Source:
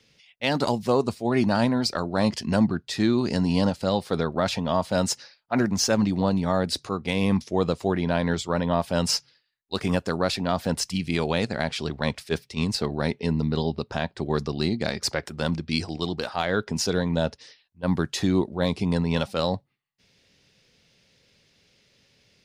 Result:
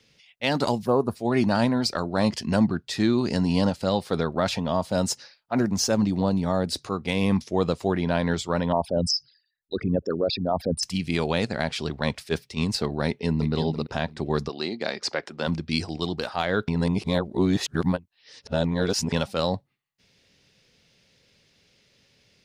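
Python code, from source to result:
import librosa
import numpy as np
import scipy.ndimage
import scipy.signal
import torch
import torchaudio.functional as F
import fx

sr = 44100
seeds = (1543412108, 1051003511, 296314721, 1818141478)

y = fx.spec_box(x, sr, start_s=0.85, length_s=0.3, low_hz=1800.0, high_hz=9400.0, gain_db=-16)
y = fx.dynamic_eq(y, sr, hz=2000.0, q=0.7, threshold_db=-37.0, ratio=4.0, max_db=-5, at=(4.61, 6.76))
y = fx.envelope_sharpen(y, sr, power=3.0, at=(8.72, 10.83))
y = fx.echo_throw(y, sr, start_s=13.07, length_s=0.45, ms=340, feedback_pct=20, wet_db=-8.0)
y = fx.bandpass_edges(y, sr, low_hz=fx.line((14.48, 390.0), (15.46, 210.0)), high_hz=5600.0, at=(14.48, 15.46), fade=0.02)
y = fx.edit(y, sr, fx.reverse_span(start_s=16.68, length_s=2.44), tone=tone)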